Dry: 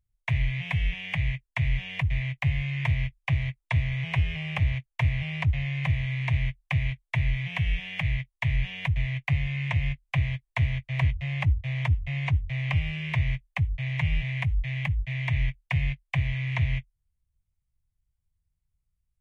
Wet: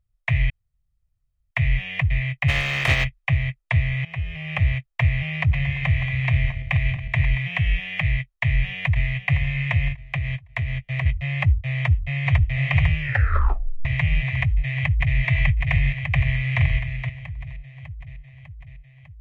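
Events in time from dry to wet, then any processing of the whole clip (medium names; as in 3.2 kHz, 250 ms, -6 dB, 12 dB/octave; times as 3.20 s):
0.50–1.51 s: room tone
2.48–3.03 s: spectral contrast reduction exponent 0.48
4.05–4.67 s: fade in, from -14 dB
5.37–7.38 s: backward echo that repeats 114 ms, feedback 65%, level -10 dB
8.16–9.14 s: echo throw 510 ms, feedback 35%, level -10.5 dB
9.88–11.06 s: compression, threshold -26 dBFS
11.76–12.44 s: echo throw 500 ms, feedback 70%, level -2 dB
13.00 s: tape stop 0.85 s
14.40–15.16 s: echo throw 600 ms, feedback 65%, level -1 dB
16.06–16.62 s: echo throw 470 ms, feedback 15%, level -8 dB
whole clip: treble shelf 3.5 kHz -8.5 dB; comb 1.6 ms, depth 34%; dynamic bell 2.2 kHz, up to +6 dB, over -47 dBFS, Q 0.92; trim +3 dB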